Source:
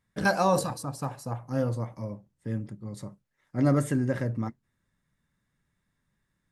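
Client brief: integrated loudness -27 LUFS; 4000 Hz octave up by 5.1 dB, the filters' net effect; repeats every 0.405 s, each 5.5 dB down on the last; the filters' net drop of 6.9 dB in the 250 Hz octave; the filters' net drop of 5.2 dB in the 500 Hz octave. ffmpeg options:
-af "equalizer=f=250:t=o:g=-8,equalizer=f=500:t=o:g=-4.5,equalizer=f=4k:t=o:g=6,aecho=1:1:405|810|1215|1620|2025|2430|2835:0.531|0.281|0.149|0.079|0.0419|0.0222|0.0118,volume=4.5dB"

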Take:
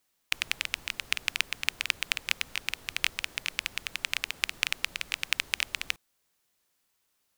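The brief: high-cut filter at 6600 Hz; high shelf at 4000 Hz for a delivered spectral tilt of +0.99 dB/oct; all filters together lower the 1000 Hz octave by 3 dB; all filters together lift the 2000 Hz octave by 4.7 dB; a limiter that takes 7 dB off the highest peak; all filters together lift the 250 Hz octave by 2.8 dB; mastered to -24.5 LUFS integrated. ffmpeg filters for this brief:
-af "lowpass=6.6k,equalizer=f=250:t=o:g=4,equalizer=f=1k:t=o:g=-7.5,equalizer=f=2k:t=o:g=5.5,highshelf=f=4k:g=6,volume=5.5dB,alimiter=limit=-1.5dB:level=0:latency=1"

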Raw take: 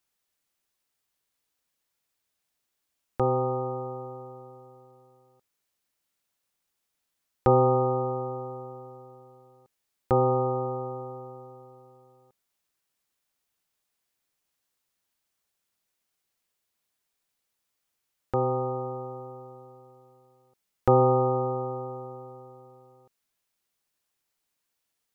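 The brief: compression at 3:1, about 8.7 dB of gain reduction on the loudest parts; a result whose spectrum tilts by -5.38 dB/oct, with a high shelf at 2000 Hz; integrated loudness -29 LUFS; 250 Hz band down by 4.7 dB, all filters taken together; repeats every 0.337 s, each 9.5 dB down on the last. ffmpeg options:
-af "equalizer=f=250:t=o:g=-8,highshelf=f=2k:g=5.5,acompressor=threshold=-28dB:ratio=3,aecho=1:1:337|674|1011|1348:0.335|0.111|0.0365|0.012,volume=5dB"

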